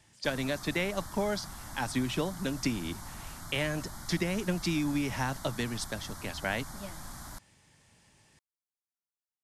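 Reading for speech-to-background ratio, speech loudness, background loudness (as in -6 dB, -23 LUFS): 11.0 dB, -33.5 LUFS, -44.5 LUFS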